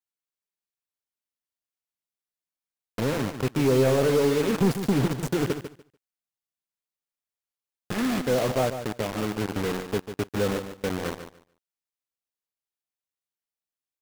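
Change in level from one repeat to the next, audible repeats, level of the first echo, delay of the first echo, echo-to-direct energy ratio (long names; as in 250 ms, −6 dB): −15.0 dB, 2, −10.0 dB, 146 ms, −10.0 dB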